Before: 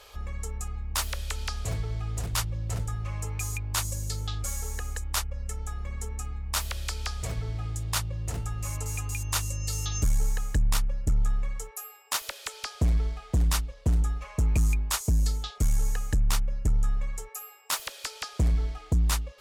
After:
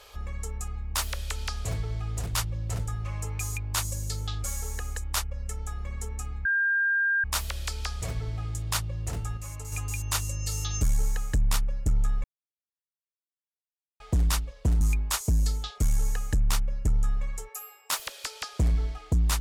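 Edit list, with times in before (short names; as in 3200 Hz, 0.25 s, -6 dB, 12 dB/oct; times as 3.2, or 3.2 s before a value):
6.45 add tone 1600 Hz -21.5 dBFS 0.79 s
8.58–8.93 gain -5.5 dB
11.45–13.21 mute
14.02–14.61 cut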